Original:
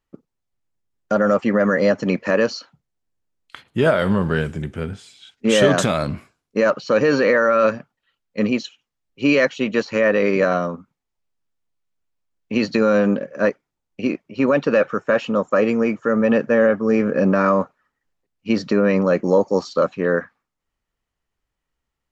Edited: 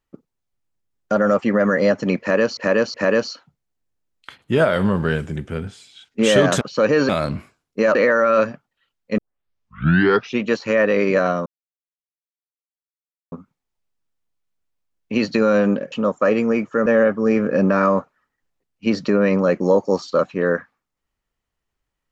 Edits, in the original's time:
2.20–2.57 s: loop, 3 plays
6.73–7.21 s: move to 5.87 s
8.44 s: tape start 1.24 s
10.72 s: insert silence 1.86 s
13.32–15.23 s: delete
16.17–16.49 s: delete

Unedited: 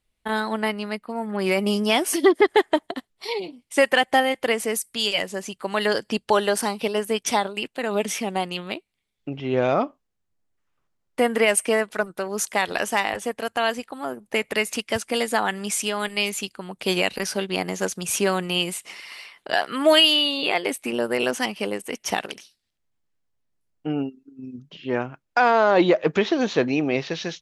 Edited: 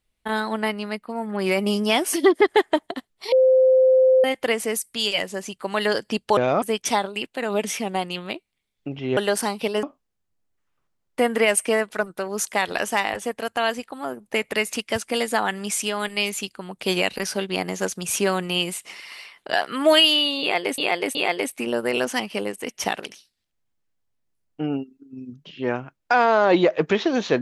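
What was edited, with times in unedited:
3.32–4.24 s: bleep 519 Hz -12 dBFS
6.37–7.03 s: swap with 9.58–9.83 s
20.41–20.78 s: loop, 3 plays

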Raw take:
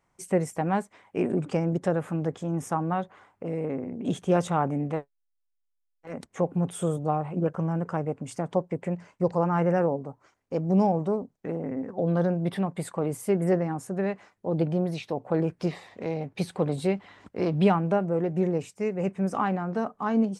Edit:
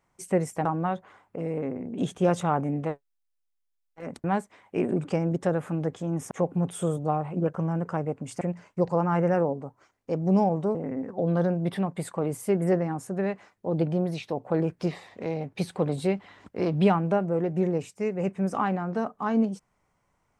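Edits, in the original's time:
0.65–2.72 s: move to 6.31 s
8.41–8.84 s: delete
11.18–11.55 s: delete

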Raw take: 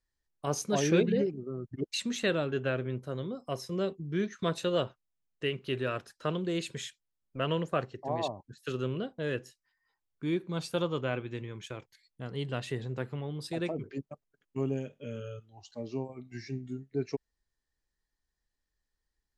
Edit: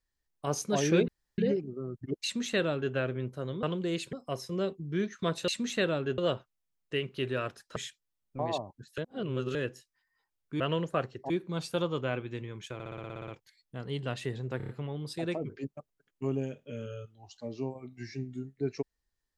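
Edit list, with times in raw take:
1.08 s: insert room tone 0.30 s
1.94–2.64 s: copy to 4.68 s
6.26–6.76 s: move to 3.33 s
7.39–8.09 s: move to 10.30 s
8.68–9.25 s: reverse
11.74 s: stutter 0.06 s, 10 plays
13.03 s: stutter 0.03 s, 5 plays

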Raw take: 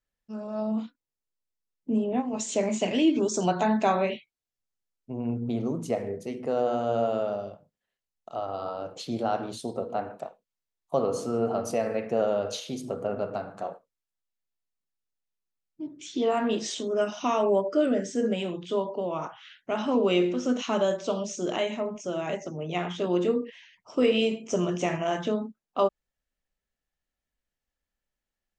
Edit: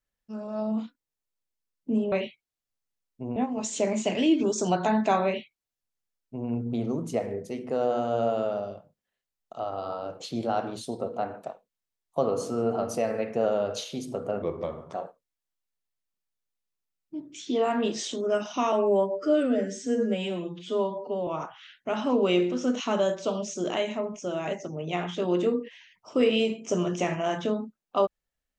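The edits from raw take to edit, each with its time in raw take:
4.01–5.25 s: copy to 2.12 s
13.18–13.60 s: speed 82%
17.39–19.09 s: stretch 1.5×

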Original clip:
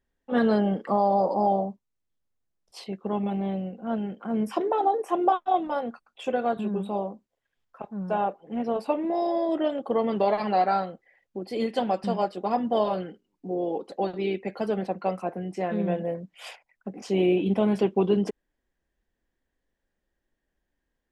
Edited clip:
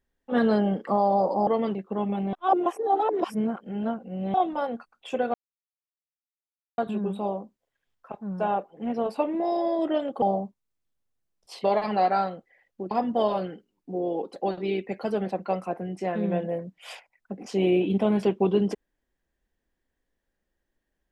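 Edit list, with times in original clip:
1.47–2.89 s: swap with 9.92–10.20 s
3.47–5.48 s: reverse
6.48 s: insert silence 1.44 s
11.47–12.47 s: delete

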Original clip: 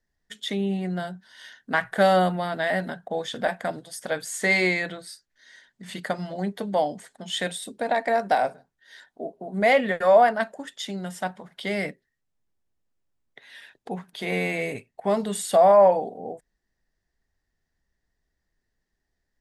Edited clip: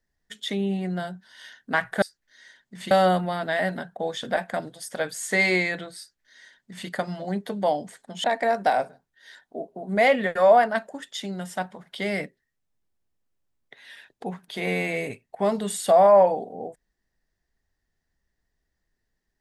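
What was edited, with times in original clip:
5.10–5.99 s: copy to 2.02 s
7.35–7.89 s: delete

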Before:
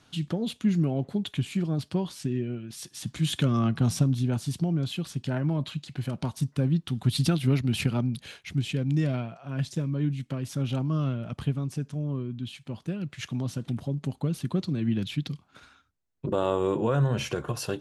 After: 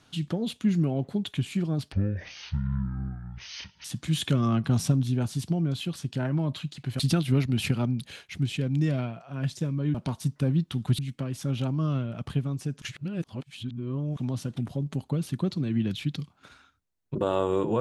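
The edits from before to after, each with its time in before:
1.92–2.96 s: speed 54%
6.11–7.15 s: move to 10.10 s
11.93–13.28 s: reverse

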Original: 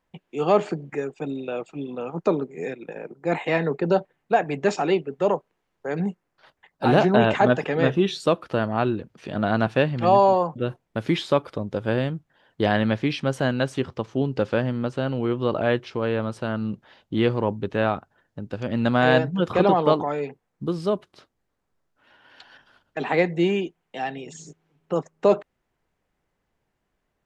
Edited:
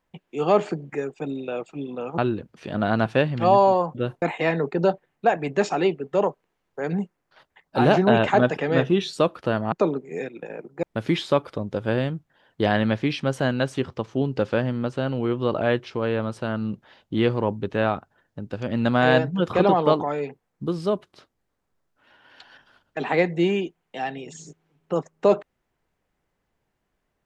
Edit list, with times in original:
2.18–3.29 s: swap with 8.79–10.83 s

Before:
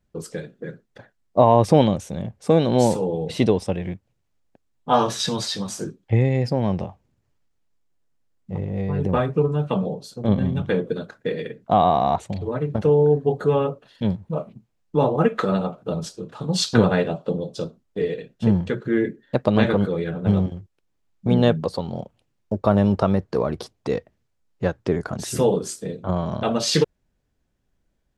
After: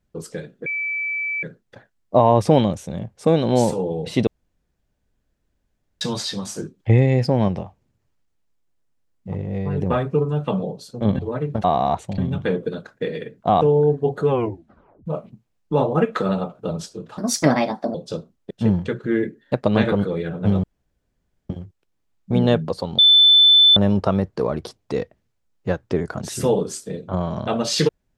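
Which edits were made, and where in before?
0.66 s: add tone 2.31 kHz -22 dBFS 0.77 s
3.50–5.24 s: room tone
6.02–6.71 s: gain +3.5 dB
10.42–11.85 s: swap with 12.39–12.84 s
13.53 s: tape stop 0.76 s
16.41–17.42 s: speed 132%
17.98–18.32 s: delete
20.45 s: insert room tone 0.86 s
21.94–22.72 s: bleep 3.52 kHz -8.5 dBFS

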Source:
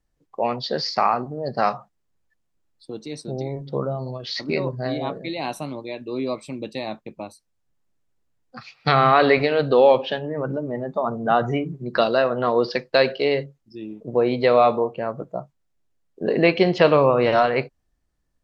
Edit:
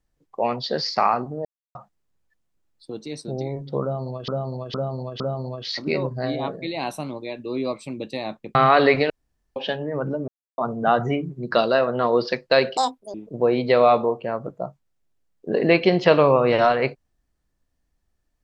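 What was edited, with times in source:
1.45–1.75 s: mute
3.82–4.28 s: loop, 4 plays
7.17–8.98 s: delete
9.53–9.99 s: room tone
10.71–11.01 s: mute
13.20–13.88 s: speed 183%

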